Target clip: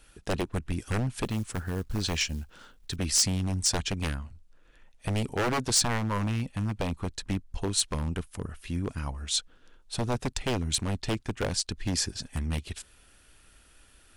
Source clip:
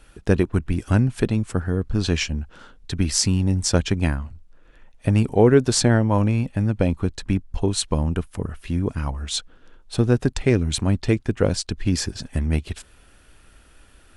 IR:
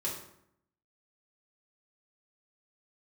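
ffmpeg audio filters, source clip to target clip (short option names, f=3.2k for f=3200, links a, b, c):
-filter_complex "[0:a]asettb=1/sr,asplit=3[a][b][c];[a]atrim=end=1.254[d];[b]atrim=start=1.25:end=2.96,asetpts=PTS-STARTPTS,afade=t=in:d=0.004:c=qsin,afade=t=out:st=1.706:d=0.004:c=qsin,acrusher=bits=8:mode=log:mix=0:aa=0.000001[e];[c]atrim=start=2.956[f];[d][e]acrossfade=d=0.004:c1=hsin:c2=qsin[g];[g][f]acrossfade=d=0.004:c1=qsin:c2=hsin,aeval=exprs='0.2*(abs(mod(val(0)/0.2+3,4)-2)-1)':c=same,highshelf=f=2.4k:g=8,volume=-8dB"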